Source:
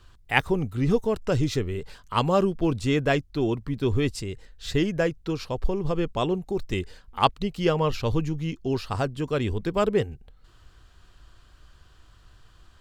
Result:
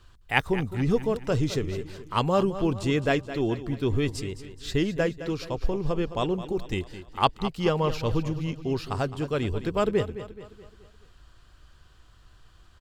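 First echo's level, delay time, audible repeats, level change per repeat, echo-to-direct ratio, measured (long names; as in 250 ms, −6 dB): −13.0 dB, 213 ms, 4, −6.5 dB, −12.0 dB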